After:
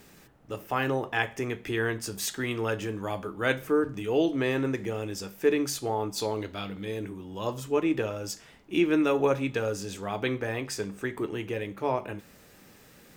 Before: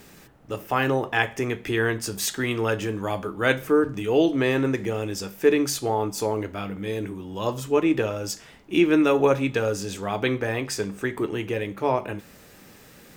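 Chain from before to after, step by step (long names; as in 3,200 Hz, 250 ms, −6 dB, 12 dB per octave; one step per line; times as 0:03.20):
0:06.16–0:06.85: parametric band 3,900 Hz +13.5 dB 0.63 octaves
level −5 dB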